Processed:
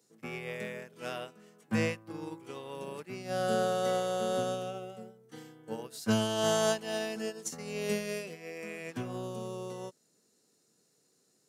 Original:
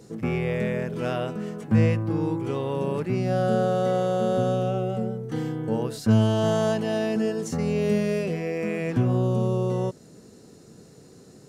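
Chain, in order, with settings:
high-pass filter 120 Hz
spectral tilt +3 dB per octave
expander for the loud parts 2.5 to 1, over −37 dBFS

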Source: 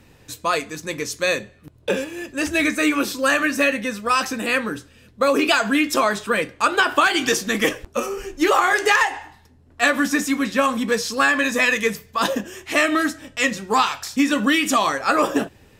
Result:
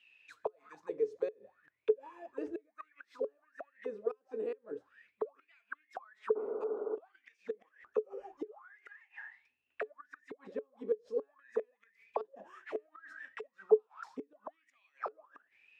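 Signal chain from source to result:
gate with flip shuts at −10 dBFS, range −34 dB
sound drawn into the spectrogram noise, 0:06.35–0:06.96, 210–1,500 Hz −27 dBFS
envelope filter 430–3,000 Hz, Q 18, down, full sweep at −24.5 dBFS
level +5 dB

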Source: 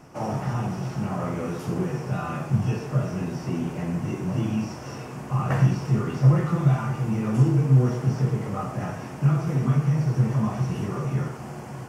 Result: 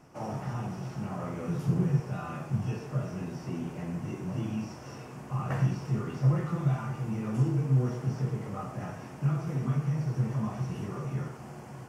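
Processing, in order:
0:01.48–0:02.00: parametric band 140 Hz +14 dB 0.74 octaves
level −7.5 dB

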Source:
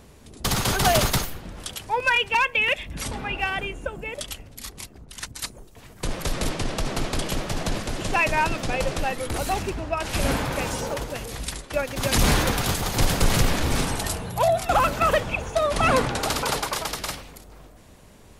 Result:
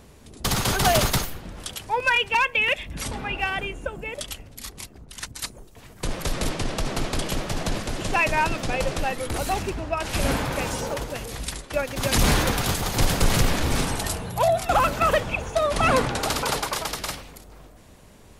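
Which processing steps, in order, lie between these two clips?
hard clipping −10.5 dBFS, distortion −38 dB

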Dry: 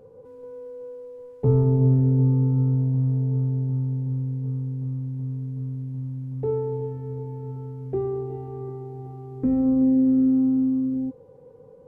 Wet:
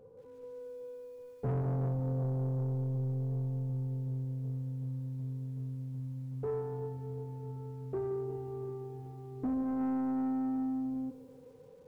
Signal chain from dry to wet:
soft clipping −22 dBFS, distortion −10 dB
feedback echo at a low word length 174 ms, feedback 55%, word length 9 bits, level −13 dB
level −7 dB

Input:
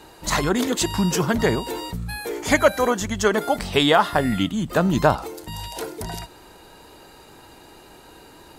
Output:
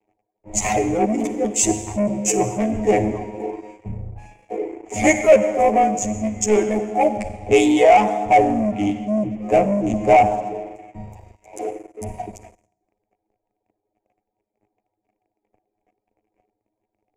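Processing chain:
adaptive Wiener filter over 15 samples
hollow resonant body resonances 210/730 Hz, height 15 dB, ringing for 65 ms
time stretch by overlap-add 2×, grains 38 ms
reverb reduction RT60 1.2 s
noise gate with hold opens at −42 dBFS
convolution reverb RT60 1.9 s, pre-delay 40 ms, DRR 9.5 dB
leveller curve on the samples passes 3
drawn EQ curve 110 Hz 0 dB, 160 Hz −12 dB, 360 Hz +5 dB, 650 Hz +5 dB, 1,500 Hz −15 dB, 2,300 Hz +7 dB, 4,000 Hz −15 dB, 7,000 Hz +8 dB, 13,000 Hz −10 dB
multiband upward and downward expander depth 40%
level −10 dB

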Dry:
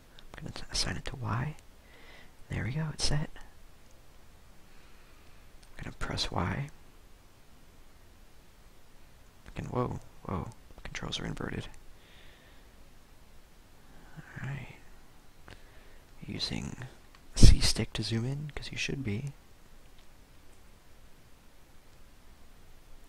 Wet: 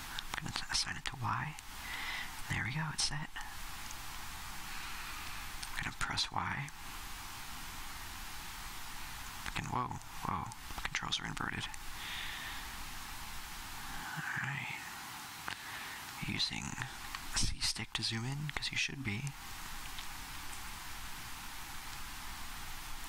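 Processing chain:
drawn EQ curve 310 Hz 0 dB, 550 Hz −12 dB, 820 Hz +11 dB
downward compressor 4 to 1, threshold −43 dBFS, peak gain reduction 29.5 dB
0:14.03–0:16.23: high-pass filter 100 Hz 12 dB per octave
level +6.5 dB

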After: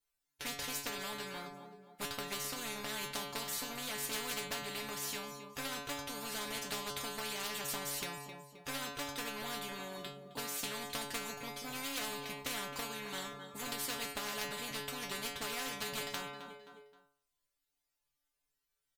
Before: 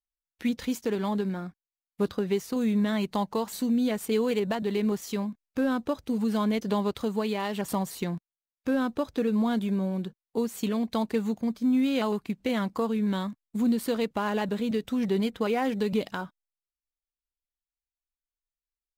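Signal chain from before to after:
harmonic generator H 3 −12 dB, 5 −24 dB, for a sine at −16.5 dBFS
stiff-string resonator 140 Hz, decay 0.54 s, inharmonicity 0.002
on a send: repeating echo 263 ms, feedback 35%, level −21.5 dB
on the sum: every bin compressed towards the loudest bin 4 to 1
level +12 dB

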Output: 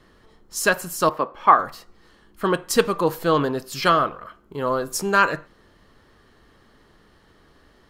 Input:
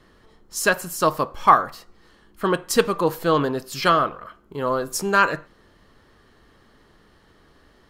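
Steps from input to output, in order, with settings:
0:01.09–0:01.59: three-way crossover with the lows and the highs turned down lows −15 dB, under 200 Hz, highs −18 dB, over 3,300 Hz

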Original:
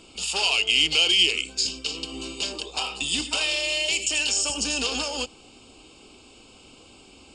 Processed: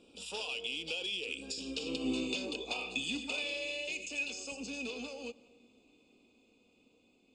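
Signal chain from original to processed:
source passing by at 0:01.94, 17 m/s, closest 7 metres
downward compressor 12 to 1, threshold −33 dBFS, peak gain reduction 12 dB
hollow resonant body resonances 250/470/2,500/3,500 Hz, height 14 dB, ringing for 20 ms
on a send: convolution reverb RT60 0.85 s, pre-delay 120 ms, DRR 20.5 dB
on the sum: level −6 dB

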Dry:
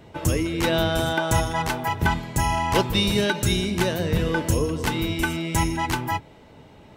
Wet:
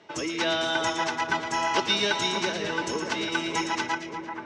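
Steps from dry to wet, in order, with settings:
phase-vocoder stretch with locked phases 0.64×
loudspeaker in its box 380–6,300 Hz, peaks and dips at 510 Hz −7 dB, 770 Hz −4 dB, 5,700 Hz +5 dB
echo with a time of its own for lows and highs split 1,900 Hz, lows 584 ms, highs 115 ms, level −7 dB

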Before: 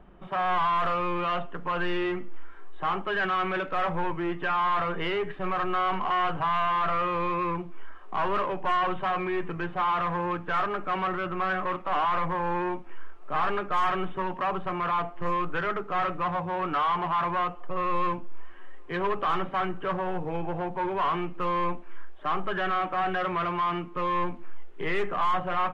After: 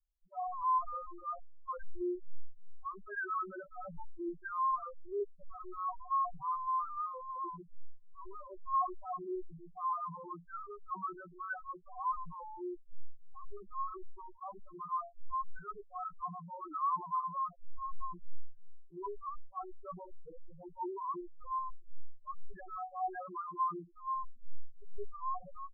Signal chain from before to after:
spectral peaks only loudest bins 2
multiband upward and downward expander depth 100%
level −7 dB

